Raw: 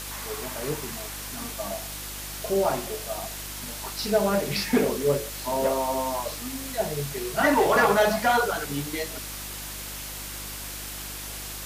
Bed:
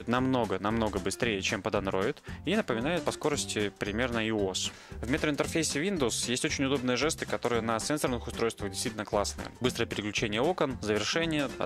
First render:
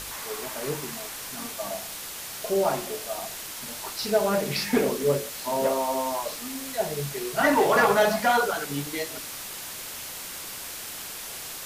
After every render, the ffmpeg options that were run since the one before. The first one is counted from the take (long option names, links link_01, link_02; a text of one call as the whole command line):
ffmpeg -i in.wav -af "bandreject=frequency=50:width_type=h:width=4,bandreject=frequency=100:width_type=h:width=4,bandreject=frequency=150:width_type=h:width=4,bandreject=frequency=200:width_type=h:width=4,bandreject=frequency=250:width_type=h:width=4,bandreject=frequency=300:width_type=h:width=4,bandreject=frequency=350:width_type=h:width=4" out.wav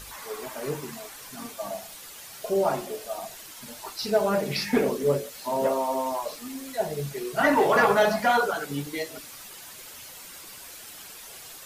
ffmpeg -i in.wav -af "afftdn=noise_reduction=9:noise_floor=-38" out.wav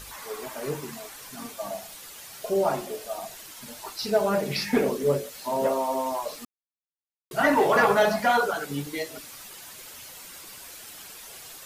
ffmpeg -i in.wav -filter_complex "[0:a]asplit=3[link_01][link_02][link_03];[link_01]atrim=end=6.45,asetpts=PTS-STARTPTS,afade=type=out:start_time=6.446:duration=0.004:curve=hsin[link_04];[link_02]atrim=start=6.45:end=7.31,asetpts=PTS-STARTPTS,volume=0[link_05];[link_03]atrim=start=7.31,asetpts=PTS-STARTPTS,afade=type=in:duration=0.004:curve=hsin[link_06];[link_04][link_05][link_06]concat=n=3:v=0:a=1" out.wav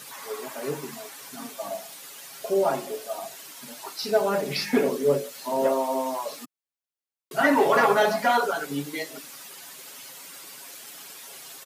ffmpeg -i in.wav -af "highpass=frequency=160:width=0.5412,highpass=frequency=160:width=1.3066,aecho=1:1:7.3:0.37" out.wav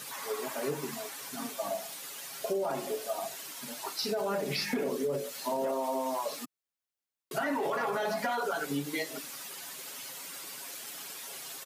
ffmpeg -i in.wav -af "alimiter=limit=-18dB:level=0:latency=1:release=32,acompressor=threshold=-29dB:ratio=4" out.wav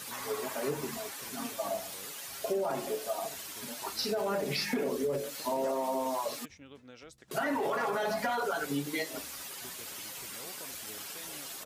ffmpeg -i in.wav -i bed.wav -filter_complex "[1:a]volume=-23.5dB[link_01];[0:a][link_01]amix=inputs=2:normalize=0" out.wav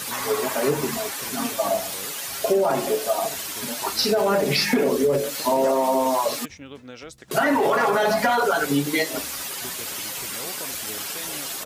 ffmpeg -i in.wav -af "volume=11.5dB" out.wav